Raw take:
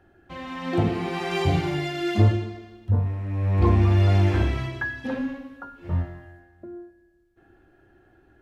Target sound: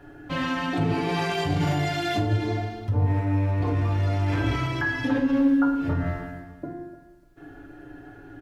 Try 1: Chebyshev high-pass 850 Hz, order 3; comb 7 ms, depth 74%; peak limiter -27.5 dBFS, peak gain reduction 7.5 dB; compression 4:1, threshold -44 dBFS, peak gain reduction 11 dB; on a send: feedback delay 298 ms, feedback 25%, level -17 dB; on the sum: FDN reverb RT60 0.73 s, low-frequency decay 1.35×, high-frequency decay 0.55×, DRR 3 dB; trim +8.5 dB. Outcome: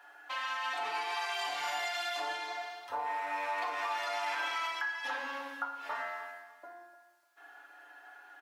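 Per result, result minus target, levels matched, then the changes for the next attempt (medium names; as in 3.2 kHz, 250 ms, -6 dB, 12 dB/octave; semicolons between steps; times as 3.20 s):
compression: peak gain reduction +11 dB; 1 kHz band +8.0 dB
remove: compression 4:1, threshold -44 dBFS, peak gain reduction 11 dB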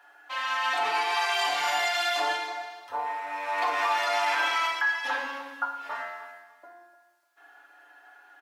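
1 kHz band +7.5 dB
remove: Chebyshev high-pass 850 Hz, order 3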